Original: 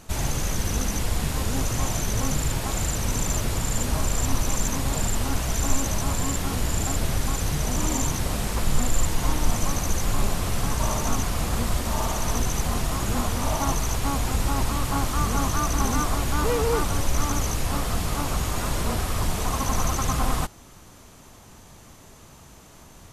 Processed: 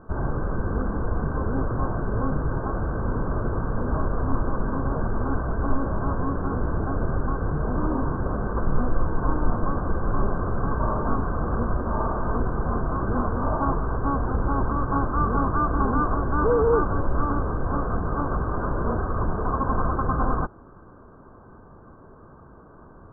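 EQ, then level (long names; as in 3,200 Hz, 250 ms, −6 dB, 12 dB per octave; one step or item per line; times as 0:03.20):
Chebyshev low-pass with heavy ripple 1,600 Hz, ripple 6 dB
+5.5 dB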